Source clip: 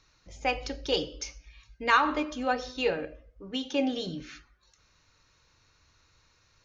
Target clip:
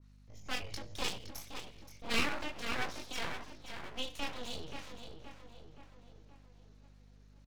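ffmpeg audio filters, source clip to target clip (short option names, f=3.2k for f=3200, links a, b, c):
-filter_complex "[0:a]lowshelf=f=220:g=6,acrossover=split=240|770[a][b][c];[b]alimiter=level_in=1.5dB:limit=-24dB:level=0:latency=1:release=456,volume=-1.5dB[d];[a][d][c]amix=inputs=3:normalize=0,flanger=delay=17:depth=7.9:speed=0.38,asplit=2[e][f];[f]adelay=465,lowpass=f=3.7k:p=1,volume=-6.5dB,asplit=2[g][h];[h]adelay=465,lowpass=f=3.7k:p=1,volume=0.54,asplit=2[i][j];[j]adelay=465,lowpass=f=3.7k:p=1,volume=0.54,asplit=2[k][l];[l]adelay=465,lowpass=f=3.7k:p=1,volume=0.54,asplit=2[m][n];[n]adelay=465,lowpass=f=3.7k:p=1,volume=0.54,asplit=2[o][p];[p]adelay=465,lowpass=f=3.7k:p=1,volume=0.54,asplit=2[q][r];[r]adelay=465,lowpass=f=3.7k:p=1,volume=0.54[s];[g][i][k][m][o][q][s]amix=inputs=7:normalize=0[t];[e][t]amix=inputs=2:normalize=0,aeval=exprs='0.282*(cos(1*acos(clip(val(0)/0.282,-1,1)))-cos(1*PI/2))+0.0178*(cos(8*acos(clip(val(0)/0.282,-1,1)))-cos(8*PI/2))':c=same,atempo=0.89,aeval=exprs='abs(val(0))':c=same,aeval=exprs='val(0)+0.00251*(sin(2*PI*50*n/s)+sin(2*PI*2*50*n/s)/2+sin(2*PI*3*50*n/s)/3+sin(2*PI*4*50*n/s)/4+sin(2*PI*5*50*n/s)/5)':c=same,adynamicequalizer=threshold=0.00501:dfrequency=1900:dqfactor=0.7:tfrequency=1900:tqfactor=0.7:attack=5:release=100:ratio=0.375:range=2:mode=boostabove:tftype=highshelf,volume=-6dB"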